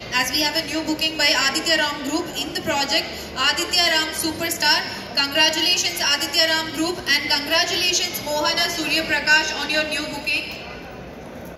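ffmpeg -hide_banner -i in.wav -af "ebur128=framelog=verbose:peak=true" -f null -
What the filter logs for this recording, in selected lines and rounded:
Integrated loudness:
  I:         -19.0 LUFS
  Threshold: -29.3 LUFS
Loudness range:
  LRA:         2.2 LU
  Threshold: -39.0 LUFS
  LRA low:   -20.1 LUFS
  LRA high:  -17.9 LUFS
True peak:
  Peak:       -3.7 dBFS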